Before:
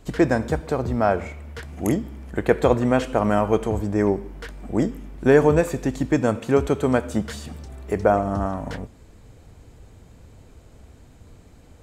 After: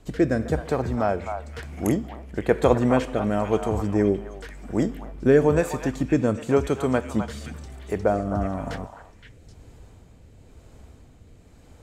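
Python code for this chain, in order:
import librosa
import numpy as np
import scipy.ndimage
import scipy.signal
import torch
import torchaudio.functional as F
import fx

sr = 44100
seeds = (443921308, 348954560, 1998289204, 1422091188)

y = fx.rotary(x, sr, hz=1.0)
y = fx.echo_stepped(y, sr, ms=259, hz=960.0, octaves=1.4, feedback_pct=70, wet_db=-4.0)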